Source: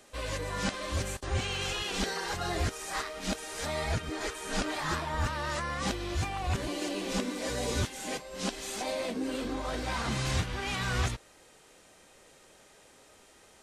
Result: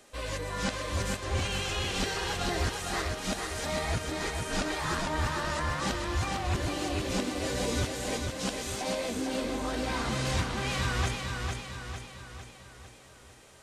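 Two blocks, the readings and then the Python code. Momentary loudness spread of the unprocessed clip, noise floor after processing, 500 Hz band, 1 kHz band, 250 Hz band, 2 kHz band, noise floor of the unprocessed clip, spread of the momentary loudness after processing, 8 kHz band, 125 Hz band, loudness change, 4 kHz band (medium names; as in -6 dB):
4 LU, -53 dBFS, +2.0 dB, +1.5 dB, +2.0 dB, +2.0 dB, -58 dBFS, 8 LU, +1.5 dB, +1.5 dB, +1.5 dB, +1.5 dB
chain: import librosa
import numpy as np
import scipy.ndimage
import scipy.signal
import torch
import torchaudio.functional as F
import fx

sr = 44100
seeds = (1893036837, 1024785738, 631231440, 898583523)

y = fx.echo_feedback(x, sr, ms=452, feedback_pct=52, wet_db=-4.5)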